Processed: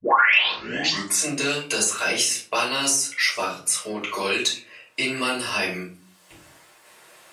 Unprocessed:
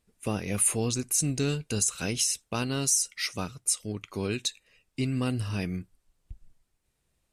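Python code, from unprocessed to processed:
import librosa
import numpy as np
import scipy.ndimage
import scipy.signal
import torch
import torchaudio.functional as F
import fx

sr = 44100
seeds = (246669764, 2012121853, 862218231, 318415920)

y = fx.tape_start_head(x, sr, length_s=1.24)
y = scipy.signal.sosfilt(scipy.signal.butter(2, 770.0, 'highpass', fs=sr, output='sos'), y)
y = fx.high_shelf(y, sr, hz=3300.0, db=-8.5)
y = fx.room_shoebox(y, sr, seeds[0], volume_m3=180.0, walls='furnished', distance_m=5.5)
y = fx.band_squash(y, sr, depth_pct=70)
y = y * librosa.db_to_amplitude(4.0)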